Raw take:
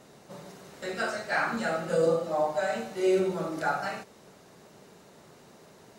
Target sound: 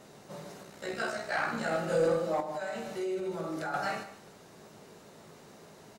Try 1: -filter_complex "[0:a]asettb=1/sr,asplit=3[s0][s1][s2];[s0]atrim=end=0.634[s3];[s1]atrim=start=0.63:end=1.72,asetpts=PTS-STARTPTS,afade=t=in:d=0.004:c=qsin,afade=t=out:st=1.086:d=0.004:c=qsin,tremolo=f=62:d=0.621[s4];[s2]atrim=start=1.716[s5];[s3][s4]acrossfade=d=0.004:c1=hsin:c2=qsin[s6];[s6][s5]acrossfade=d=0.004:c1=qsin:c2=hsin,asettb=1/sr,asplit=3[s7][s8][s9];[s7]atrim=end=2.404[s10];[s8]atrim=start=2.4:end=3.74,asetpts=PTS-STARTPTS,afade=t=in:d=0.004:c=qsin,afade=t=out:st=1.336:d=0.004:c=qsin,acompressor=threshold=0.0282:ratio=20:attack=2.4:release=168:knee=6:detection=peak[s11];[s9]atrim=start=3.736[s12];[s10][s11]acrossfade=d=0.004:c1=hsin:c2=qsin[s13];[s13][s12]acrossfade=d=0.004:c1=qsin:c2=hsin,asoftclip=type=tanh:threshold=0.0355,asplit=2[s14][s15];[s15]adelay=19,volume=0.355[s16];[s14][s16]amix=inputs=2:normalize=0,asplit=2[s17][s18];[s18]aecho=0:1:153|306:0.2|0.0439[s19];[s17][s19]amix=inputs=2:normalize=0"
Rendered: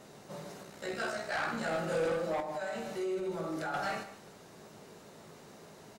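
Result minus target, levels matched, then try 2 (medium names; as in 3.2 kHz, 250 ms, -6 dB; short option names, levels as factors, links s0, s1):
saturation: distortion +7 dB
-filter_complex "[0:a]asettb=1/sr,asplit=3[s0][s1][s2];[s0]atrim=end=0.634[s3];[s1]atrim=start=0.63:end=1.72,asetpts=PTS-STARTPTS,afade=t=in:d=0.004:c=qsin,afade=t=out:st=1.086:d=0.004:c=qsin,tremolo=f=62:d=0.621[s4];[s2]atrim=start=1.716[s5];[s3][s4]acrossfade=d=0.004:c1=hsin:c2=qsin[s6];[s6][s5]acrossfade=d=0.004:c1=qsin:c2=hsin,asettb=1/sr,asplit=3[s7][s8][s9];[s7]atrim=end=2.404[s10];[s8]atrim=start=2.4:end=3.74,asetpts=PTS-STARTPTS,afade=t=in:d=0.004:c=qsin,afade=t=out:st=1.336:d=0.004:c=qsin,acompressor=threshold=0.0282:ratio=20:attack=2.4:release=168:knee=6:detection=peak[s11];[s9]atrim=start=3.736[s12];[s10][s11]acrossfade=d=0.004:c1=hsin:c2=qsin[s13];[s13][s12]acrossfade=d=0.004:c1=qsin:c2=hsin,asoftclip=type=tanh:threshold=0.0841,asplit=2[s14][s15];[s15]adelay=19,volume=0.355[s16];[s14][s16]amix=inputs=2:normalize=0,asplit=2[s17][s18];[s18]aecho=0:1:153|306:0.2|0.0439[s19];[s17][s19]amix=inputs=2:normalize=0"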